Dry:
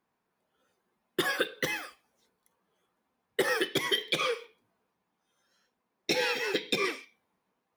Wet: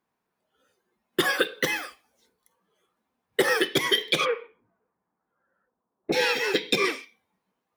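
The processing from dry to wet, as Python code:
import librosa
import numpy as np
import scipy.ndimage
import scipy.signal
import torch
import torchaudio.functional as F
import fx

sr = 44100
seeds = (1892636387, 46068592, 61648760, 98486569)

y = fx.lowpass(x, sr, hz=fx.line((4.24, 2400.0), (6.12, 1200.0)), slope=24, at=(4.24, 6.12), fade=0.02)
y = fx.noise_reduce_blind(y, sr, reduce_db=6)
y = fx.highpass(y, sr, hz=130.0, slope=12, at=(1.28, 1.74))
y = y * 10.0 ** (5.5 / 20.0)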